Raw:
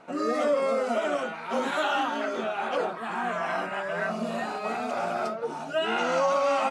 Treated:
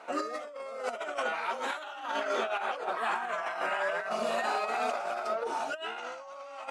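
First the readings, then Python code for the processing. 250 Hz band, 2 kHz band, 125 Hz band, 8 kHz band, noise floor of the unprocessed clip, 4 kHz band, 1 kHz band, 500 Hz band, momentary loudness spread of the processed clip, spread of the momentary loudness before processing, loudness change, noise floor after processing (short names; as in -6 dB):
-12.0 dB, -2.5 dB, under -15 dB, -3.5 dB, -37 dBFS, -4.5 dB, -4.0 dB, -7.0 dB, 9 LU, 7 LU, -5.0 dB, -45 dBFS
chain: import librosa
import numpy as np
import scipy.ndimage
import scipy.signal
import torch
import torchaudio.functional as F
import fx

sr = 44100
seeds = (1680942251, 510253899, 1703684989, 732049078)

y = scipy.signal.sosfilt(scipy.signal.butter(2, 500.0, 'highpass', fs=sr, output='sos'), x)
y = fx.over_compress(y, sr, threshold_db=-33.0, ratio=-0.5)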